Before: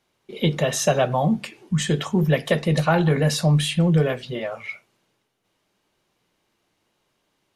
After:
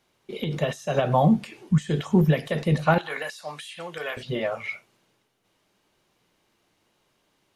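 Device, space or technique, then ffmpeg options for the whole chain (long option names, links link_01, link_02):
de-esser from a sidechain: -filter_complex "[0:a]asettb=1/sr,asplit=3[link_01][link_02][link_03];[link_01]atrim=end=2.984[link_04];[link_02]atrim=start=2.98:end=4.17,asetpts=PTS-STARTPTS,afade=type=in:duration=0.004:curve=qsin,afade=type=out:start_time=1.186:duration=0.004:curve=qsin,highpass=990[link_05];[link_03]atrim=start=4.166[link_06];[link_04][link_05]acrossfade=duration=0.004:curve1=hsin:curve2=qsin[link_07];[link_07][link_06]acrossfade=duration=0.004:curve1=qsin:curve2=hsin,asplit=2[link_08][link_09];[link_09]highpass=frequency=4100:width=0.5412,highpass=frequency=4100:width=1.3066,apad=whole_len=333043[link_10];[link_08][link_10]sidechaincompress=threshold=-47dB:ratio=5:attack=3.2:release=64,volume=2dB"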